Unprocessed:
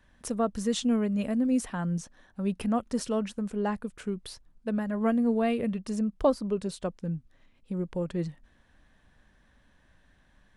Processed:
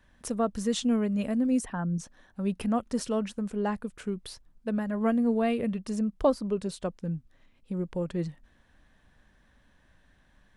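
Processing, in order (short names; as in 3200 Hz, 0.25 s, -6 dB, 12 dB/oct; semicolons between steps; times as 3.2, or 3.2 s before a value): 1.59–2 formant sharpening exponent 1.5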